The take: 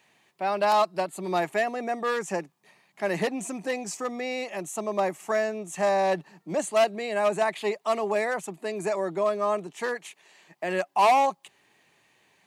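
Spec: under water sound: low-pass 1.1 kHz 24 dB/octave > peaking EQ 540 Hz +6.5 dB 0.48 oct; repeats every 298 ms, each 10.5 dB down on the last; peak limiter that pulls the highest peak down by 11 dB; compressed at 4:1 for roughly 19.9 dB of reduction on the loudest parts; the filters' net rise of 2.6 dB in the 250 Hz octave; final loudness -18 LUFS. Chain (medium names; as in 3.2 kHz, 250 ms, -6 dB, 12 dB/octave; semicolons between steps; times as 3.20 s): peaking EQ 250 Hz +3 dB; compression 4:1, threshold -41 dBFS; peak limiter -36.5 dBFS; low-pass 1.1 kHz 24 dB/octave; peaking EQ 540 Hz +6.5 dB 0.48 oct; feedback delay 298 ms, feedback 30%, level -10.5 dB; trim +25.5 dB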